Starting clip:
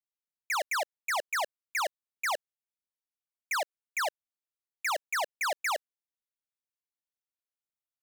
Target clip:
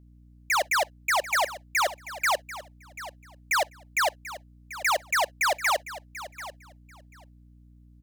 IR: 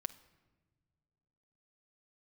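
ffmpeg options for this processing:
-filter_complex "[0:a]aecho=1:1:739|1478:0.178|0.0285,asplit=2[a][b];[1:a]atrim=start_sample=2205,atrim=end_sample=3087[c];[b][c]afir=irnorm=-1:irlink=0,volume=-4.5dB[d];[a][d]amix=inputs=2:normalize=0,aeval=exprs='val(0)+0.00178*(sin(2*PI*60*n/s)+sin(2*PI*2*60*n/s)/2+sin(2*PI*3*60*n/s)/3+sin(2*PI*4*60*n/s)/4+sin(2*PI*5*60*n/s)/5)':c=same,volume=3dB"

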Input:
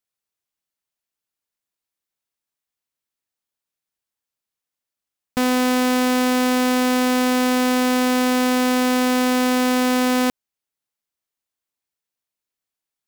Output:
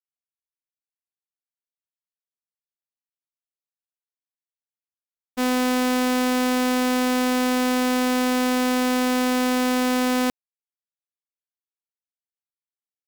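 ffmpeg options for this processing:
-af "agate=range=-33dB:threshold=-15dB:ratio=3:detection=peak"

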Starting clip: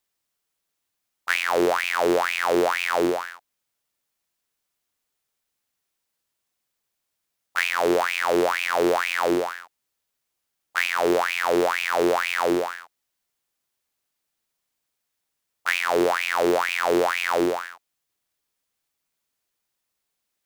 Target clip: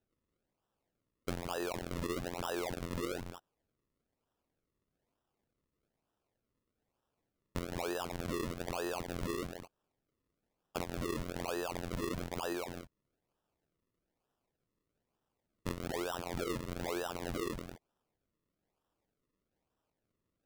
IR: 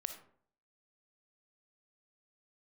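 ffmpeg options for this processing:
-af "acrusher=samples=39:mix=1:aa=0.000001:lfo=1:lforange=39:lforate=1.1,acompressor=threshold=-29dB:ratio=6,volume=-5.5dB"

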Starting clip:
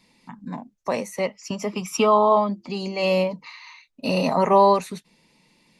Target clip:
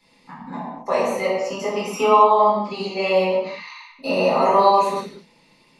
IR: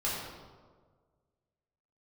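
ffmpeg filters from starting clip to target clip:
-filter_complex "[0:a]bass=f=250:g=-6,treble=f=4k:g=-3,acrossover=split=260|2800[a][b][c];[a]acompressor=threshold=-44dB:ratio=4[d];[b]acompressor=threshold=-19dB:ratio=4[e];[c]acompressor=threshold=-40dB:ratio=4[f];[d][e][f]amix=inputs=3:normalize=0[g];[1:a]atrim=start_sample=2205,afade=t=out:st=0.32:d=0.01,atrim=end_sample=14553[h];[g][h]afir=irnorm=-1:irlink=0"

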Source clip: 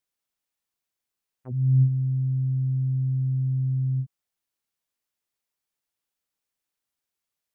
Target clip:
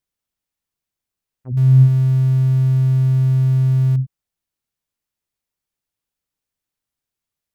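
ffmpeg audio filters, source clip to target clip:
-filter_complex "[0:a]asettb=1/sr,asplit=3[a][b][c];[a]atrim=end=1.574[d];[b]atrim=start=1.57:end=3.96,asetpts=PTS-STARTPTS,afade=t=in:d=0.004:c=qsin,afade=t=out:st=2.386:d=0.004:c=qsin,aeval=exprs='val(0)+0.5*0.0335*sgn(val(0))':c=same[e];[c]atrim=start=3.956[f];[d][e]acrossfade=d=0.004:c1=hsin:c2=qsin[g];[g][f]acrossfade=d=0.004:c1=qsin:c2=hsin,lowshelf=f=210:g=11"

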